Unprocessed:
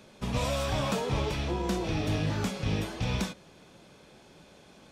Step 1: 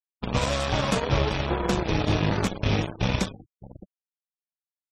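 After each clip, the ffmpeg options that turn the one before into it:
-filter_complex "[0:a]asplit=2[a][b];[b]adelay=610,lowpass=f=1.8k:p=1,volume=-8dB,asplit=2[c][d];[d]adelay=610,lowpass=f=1.8k:p=1,volume=0.23,asplit=2[e][f];[f]adelay=610,lowpass=f=1.8k:p=1,volume=0.23[g];[a][c][e][g]amix=inputs=4:normalize=0,aeval=exprs='0.141*(cos(1*acos(clip(val(0)/0.141,-1,1)))-cos(1*PI/2))+0.02*(cos(7*acos(clip(val(0)/0.141,-1,1)))-cos(7*PI/2))+0.00178*(cos(8*acos(clip(val(0)/0.141,-1,1)))-cos(8*PI/2))':c=same,afftfilt=real='re*gte(hypot(re,im),0.00891)':imag='im*gte(hypot(re,im),0.00891)':win_size=1024:overlap=0.75,volume=5.5dB"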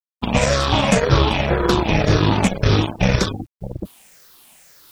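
-af "afftfilt=real='re*pow(10,9/40*sin(2*PI*(0.56*log(max(b,1)*sr/1024/100)/log(2)-(-1.9)*(pts-256)/sr)))':imag='im*pow(10,9/40*sin(2*PI*(0.56*log(max(b,1)*sr/1024/100)/log(2)-(-1.9)*(pts-256)/sr)))':win_size=1024:overlap=0.75,areverse,acompressor=mode=upward:threshold=-25dB:ratio=2.5,areverse,acrusher=bits=10:mix=0:aa=0.000001,volume=7dB"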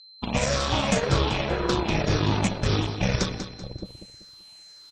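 -filter_complex "[0:a]aeval=exprs='val(0)+0.00891*sin(2*PI*4100*n/s)':c=same,lowpass=f=6.9k:t=q:w=1.5,asplit=2[a][b];[b]aecho=0:1:192|384|576|768:0.316|0.111|0.0387|0.0136[c];[a][c]amix=inputs=2:normalize=0,volume=-8dB"

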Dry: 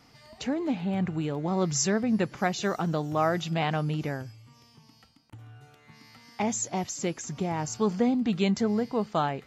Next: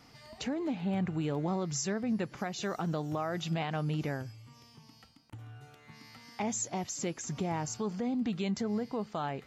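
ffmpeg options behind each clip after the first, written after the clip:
-af "alimiter=level_in=0.5dB:limit=-24dB:level=0:latency=1:release=305,volume=-0.5dB"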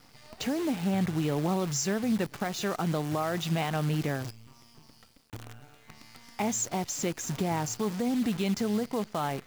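-af "acrusher=bits=8:dc=4:mix=0:aa=0.000001,volume=4dB"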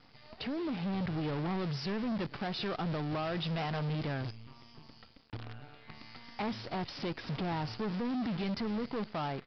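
-af "dynaudnorm=f=540:g=3:m=5dB,aresample=11025,asoftclip=type=tanh:threshold=-28.5dB,aresample=44100,volume=-3dB"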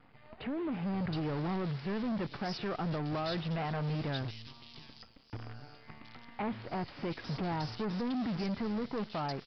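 -filter_complex "[0:a]acrossover=split=3000[a][b];[b]adelay=720[c];[a][c]amix=inputs=2:normalize=0"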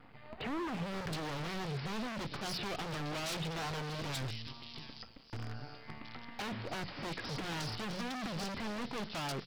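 -af "aeval=exprs='0.015*(abs(mod(val(0)/0.015+3,4)-2)-1)':c=same,bandreject=f=60:t=h:w=6,bandreject=f=120:t=h:w=6,bandreject=f=180:t=h:w=6,volume=4dB"

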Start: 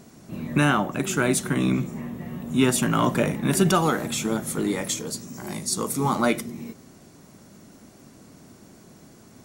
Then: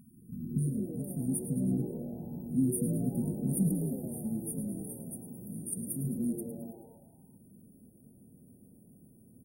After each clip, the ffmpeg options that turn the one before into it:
-filter_complex "[0:a]afftfilt=real='re*(1-between(b*sr/4096,270,8800))':imag='im*(1-between(b*sr/4096,270,8800))':win_size=4096:overlap=0.75,asplit=7[a][b][c][d][e][f][g];[b]adelay=108,afreqshift=110,volume=-10.5dB[h];[c]adelay=216,afreqshift=220,volume=-16.3dB[i];[d]adelay=324,afreqshift=330,volume=-22.2dB[j];[e]adelay=432,afreqshift=440,volume=-28dB[k];[f]adelay=540,afreqshift=550,volume=-33.9dB[l];[g]adelay=648,afreqshift=660,volume=-39.7dB[m];[a][h][i][j][k][l][m]amix=inputs=7:normalize=0,volume=-6.5dB"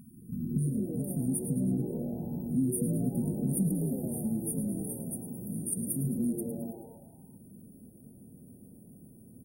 -af "acompressor=threshold=-34dB:ratio=2,volume=5dB"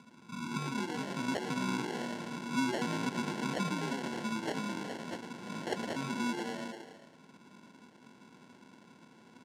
-af "acrusher=samples=36:mix=1:aa=0.000001,highpass=270,lowpass=7.4k"

